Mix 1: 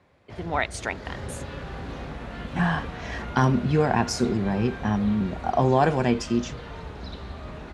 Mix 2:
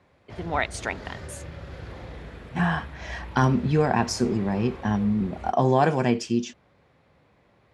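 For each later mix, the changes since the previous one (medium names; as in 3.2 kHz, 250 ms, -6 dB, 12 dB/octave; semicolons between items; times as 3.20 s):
second sound: muted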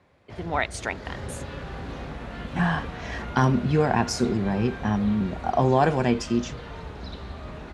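second sound: unmuted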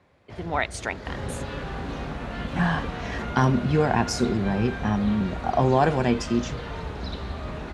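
second sound +4.5 dB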